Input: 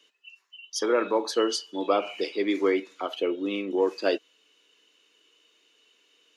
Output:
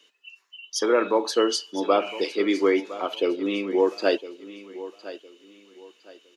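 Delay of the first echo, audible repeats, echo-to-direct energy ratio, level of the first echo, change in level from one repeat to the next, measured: 1.01 s, 2, -15.0 dB, -15.5 dB, -11.0 dB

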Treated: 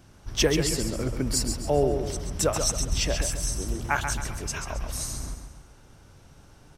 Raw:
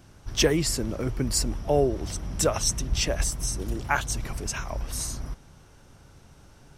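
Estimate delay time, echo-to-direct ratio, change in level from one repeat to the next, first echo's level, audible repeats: 0.135 s, -6.0 dB, -7.5 dB, -7.0 dB, 4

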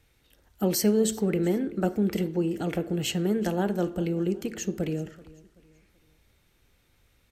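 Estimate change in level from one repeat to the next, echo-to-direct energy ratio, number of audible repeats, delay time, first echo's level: -9.0 dB, -20.5 dB, 2, 0.382 s, -21.0 dB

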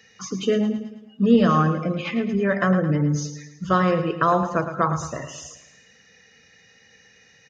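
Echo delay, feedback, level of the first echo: 0.109 s, 49%, -10.5 dB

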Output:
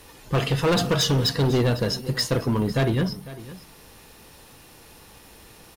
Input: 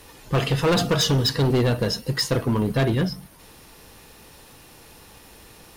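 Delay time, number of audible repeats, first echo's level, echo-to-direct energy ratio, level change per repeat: 0.502 s, 1, -17.0 dB, -17.0 dB, no steady repeat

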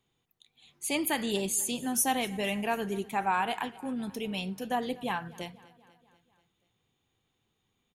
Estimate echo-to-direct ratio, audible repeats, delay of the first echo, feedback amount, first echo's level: -19.5 dB, 3, 0.244 s, 59%, -21.5 dB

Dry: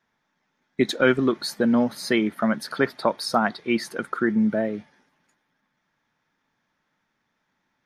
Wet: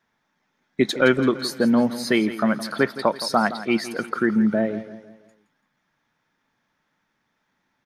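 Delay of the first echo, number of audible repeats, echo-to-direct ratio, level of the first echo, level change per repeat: 0.167 s, 3, -13.0 dB, -14.0 dB, -7.0 dB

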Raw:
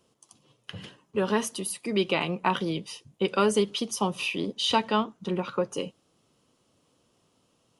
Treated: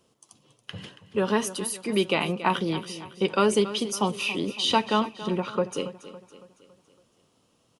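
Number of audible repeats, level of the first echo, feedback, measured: 4, -14.5 dB, 49%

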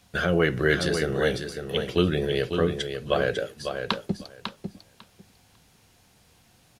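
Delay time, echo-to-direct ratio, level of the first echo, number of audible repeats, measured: 0.549 s, -7.0 dB, -7.0 dB, 2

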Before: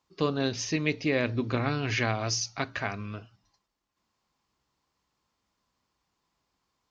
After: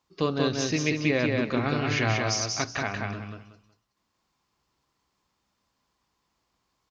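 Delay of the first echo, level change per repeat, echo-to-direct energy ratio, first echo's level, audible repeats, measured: 0.185 s, -12.5 dB, -2.5 dB, -3.0 dB, 3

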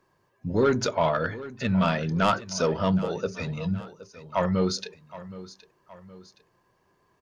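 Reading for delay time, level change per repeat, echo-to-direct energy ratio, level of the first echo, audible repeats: 0.769 s, -6.5 dB, -15.5 dB, -16.5 dB, 2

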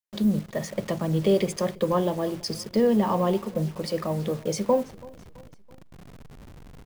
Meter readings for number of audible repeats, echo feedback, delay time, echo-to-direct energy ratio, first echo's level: 3, 49%, 0.331 s, -21.5 dB, -22.5 dB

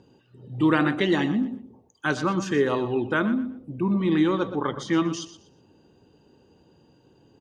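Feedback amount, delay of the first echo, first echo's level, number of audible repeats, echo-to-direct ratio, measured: 25%, 0.121 s, -13.0 dB, 2, -12.5 dB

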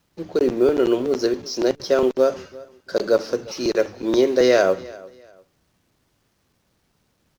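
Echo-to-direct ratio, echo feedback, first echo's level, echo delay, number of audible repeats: -21.0 dB, 28%, -21.5 dB, 0.347 s, 2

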